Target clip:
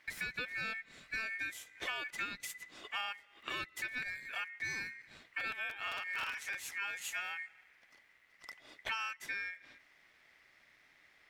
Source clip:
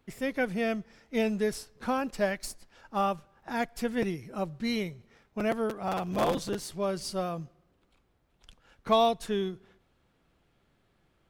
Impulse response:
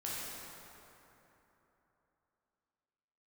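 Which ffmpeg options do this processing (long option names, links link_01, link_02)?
-af "acompressor=threshold=-42dB:ratio=6,aeval=exprs='val(0)*sin(2*PI*2000*n/s)':channel_layout=same,volume=6.5dB"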